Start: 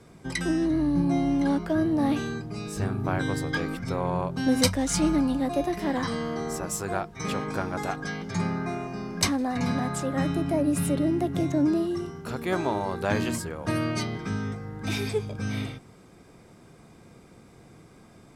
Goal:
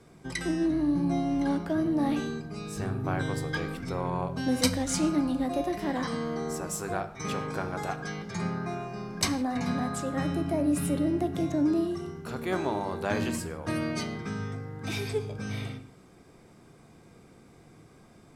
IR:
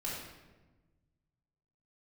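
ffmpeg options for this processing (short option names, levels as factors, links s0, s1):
-filter_complex "[0:a]bandreject=f=50:t=h:w=6,bandreject=f=100:t=h:w=6,asplit=2[s0][s1];[1:a]atrim=start_sample=2205,afade=t=out:st=0.22:d=0.01,atrim=end_sample=10143[s2];[s1][s2]afir=irnorm=-1:irlink=0,volume=0.316[s3];[s0][s3]amix=inputs=2:normalize=0,volume=0.596"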